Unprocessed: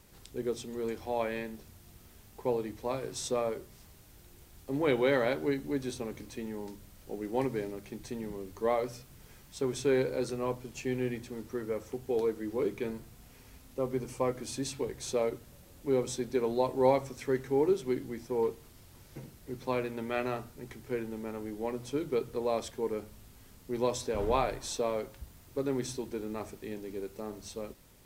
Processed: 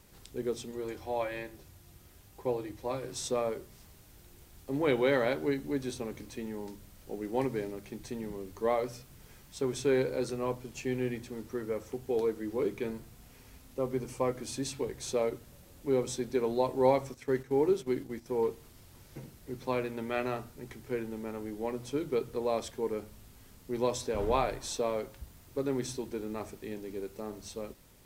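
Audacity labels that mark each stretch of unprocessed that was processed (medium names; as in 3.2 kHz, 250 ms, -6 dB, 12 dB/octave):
0.710000	3.090000	comb of notches 220 Hz
17.140000	18.260000	gate -43 dBFS, range -9 dB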